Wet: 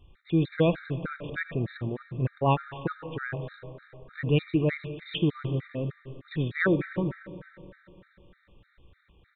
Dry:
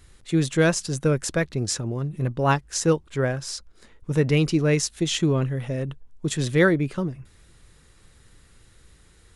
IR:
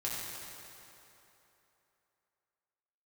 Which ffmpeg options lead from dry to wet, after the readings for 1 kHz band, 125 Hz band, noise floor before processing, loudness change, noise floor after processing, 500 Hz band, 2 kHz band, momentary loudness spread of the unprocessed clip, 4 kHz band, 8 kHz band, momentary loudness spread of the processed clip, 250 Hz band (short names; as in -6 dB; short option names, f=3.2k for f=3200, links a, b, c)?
-3.5 dB, -5.0 dB, -55 dBFS, -5.5 dB, -67 dBFS, -6.5 dB, -5.5 dB, 11 LU, -9.5 dB, under -40 dB, 17 LU, -5.0 dB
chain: -filter_complex "[0:a]aresample=8000,aresample=44100,asplit=2[a][b];[1:a]atrim=start_sample=2205,adelay=80[c];[b][c]afir=irnorm=-1:irlink=0,volume=-14.5dB[d];[a][d]amix=inputs=2:normalize=0,afftfilt=real='re*gt(sin(2*PI*3.3*pts/sr)*(1-2*mod(floor(b*sr/1024/1200),2)),0)':imag='im*gt(sin(2*PI*3.3*pts/sr)*(1-2*mod(floor(b*sr/1024/1200),2)),0)':win_size=1024:overlap=0.75,volume=-2.5dB"